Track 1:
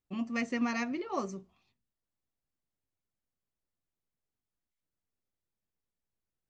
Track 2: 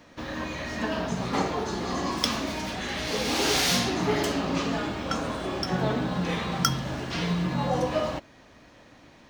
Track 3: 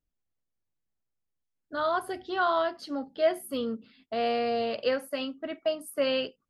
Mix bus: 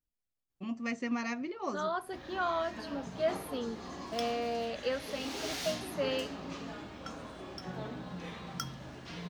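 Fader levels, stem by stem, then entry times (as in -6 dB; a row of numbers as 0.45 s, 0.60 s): -2.5 dB, -14.5 dB, -6.5 dB; 0.50 s, 1.95 s, 0.00 s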